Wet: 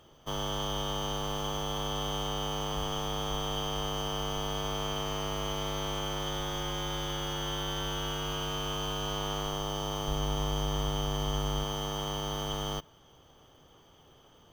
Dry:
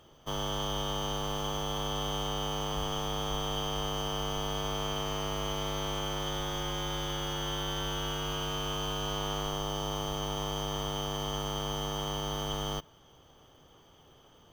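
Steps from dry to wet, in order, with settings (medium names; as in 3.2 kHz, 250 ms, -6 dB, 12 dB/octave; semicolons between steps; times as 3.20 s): 10.07–11.64 s: bass shelf 130 Hz +9.5 dB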